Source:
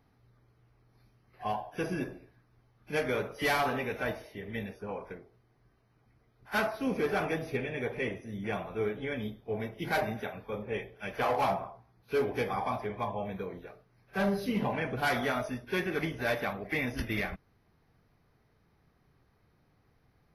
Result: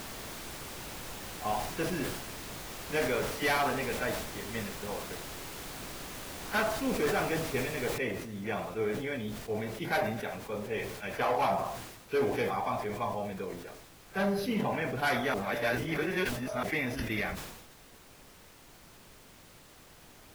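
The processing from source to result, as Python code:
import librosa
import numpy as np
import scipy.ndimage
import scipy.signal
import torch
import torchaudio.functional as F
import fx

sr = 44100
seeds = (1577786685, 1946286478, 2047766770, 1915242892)

y = fx.noise_floor_step(x, sr, seeds[0], at_s=7.98, before_db=-41, after_db=-54, tilt_db=3.0)
y = fx.edit(y, sr, fx.reverse_span(start_s=15.34, length_s=1.29), tone=tone)
y = fx.low_shelf(y, sr, hz=130.0, db=-4.5)
y = fx.sustainer(y, sr, db_per_s=51.0)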